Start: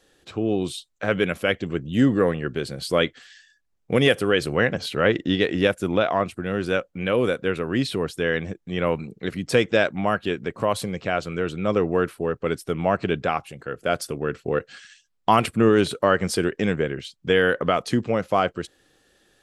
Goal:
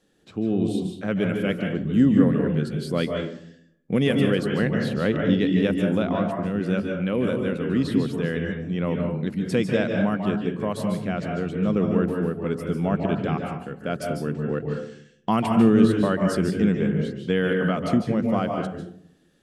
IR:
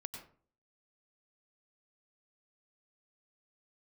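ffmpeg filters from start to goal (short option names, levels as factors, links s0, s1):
-filter_complex "[0:a]equalizer=f=200:t=o:w=1.3:g=13[s0];[1:a]atrim=start_sample=2205,asetrate=27783,aresample=44100[s1];[s0][s1]afir=irnorm=-1:irlink=0,volume=0.473"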